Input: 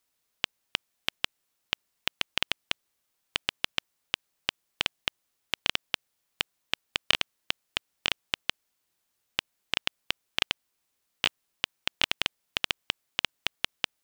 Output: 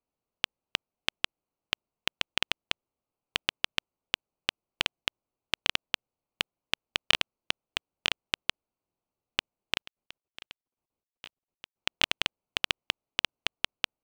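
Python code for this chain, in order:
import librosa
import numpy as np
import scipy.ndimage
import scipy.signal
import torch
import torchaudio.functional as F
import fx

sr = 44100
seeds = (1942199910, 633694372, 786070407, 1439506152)

y = fx.wiener(x, sr, points=25)
y = fx.level_steps(y, sr, step_db=23, at=(9.77, 11.76))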